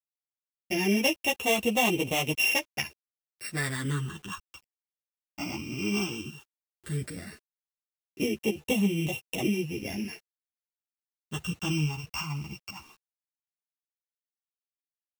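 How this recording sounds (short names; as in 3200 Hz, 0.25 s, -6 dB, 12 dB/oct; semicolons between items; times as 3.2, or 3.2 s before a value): a buzz of ramps at a fixed pitch in blocks of 16 samples; phasing stages 8, 0.14 Hz, lowest notch 510–1500 Hz; a quantiser's noise floor 10-bit, dither none; a shimmering, thickened sound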